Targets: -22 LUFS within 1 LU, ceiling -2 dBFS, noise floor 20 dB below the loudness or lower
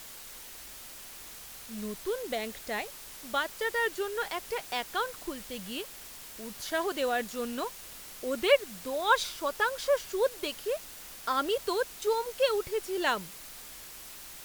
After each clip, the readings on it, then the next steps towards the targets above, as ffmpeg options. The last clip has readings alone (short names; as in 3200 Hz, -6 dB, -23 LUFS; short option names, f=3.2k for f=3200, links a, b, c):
noise floor -46 dBFS; noise floor target -52 dBFS; loudness -31.5 LUFS; peak -10.5 dBFS; loudness target -22.0 LUFS
-> -af "afftdn=nr=6:nf=-46"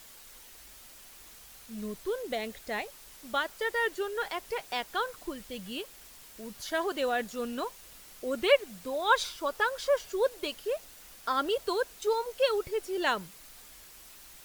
noise floor -52 dBFS; loudness -31.5 LUFS; peak -10.5 dBFS; loudness target -22.0 LUFS
-> -af "volume=9.5dB,alimiter=limit=-2dB:level=0:latency=1"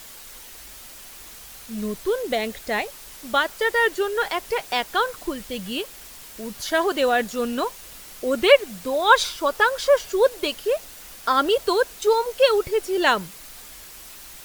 loudness -22.0 LUFS; peak -2.0 dBFS; noise floor -42 dBFS